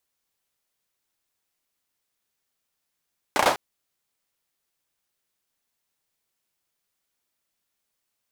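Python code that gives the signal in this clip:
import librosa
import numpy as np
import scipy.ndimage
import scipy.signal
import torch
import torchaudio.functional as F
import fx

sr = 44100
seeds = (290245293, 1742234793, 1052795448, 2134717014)

y = fx.drum_clap(sr, seeds[0], length_s=0.2, bursts=4, spacing_ms=33, hz=730.0, decay_s=0.36)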